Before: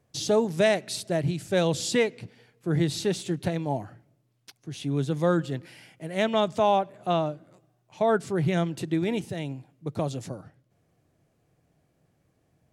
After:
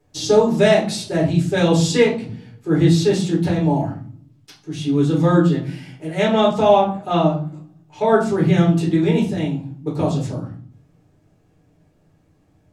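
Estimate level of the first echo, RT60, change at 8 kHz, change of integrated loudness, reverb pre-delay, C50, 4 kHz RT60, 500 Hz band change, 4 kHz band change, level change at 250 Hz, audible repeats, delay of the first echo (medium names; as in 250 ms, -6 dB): no echo, 0.50 s, +5.0 dB, +9.0 dB, 5 ms, 7.5 dB, 0.30 s, +8.5 dB, +6.5 dB, +11.0 dB, no echo, no echo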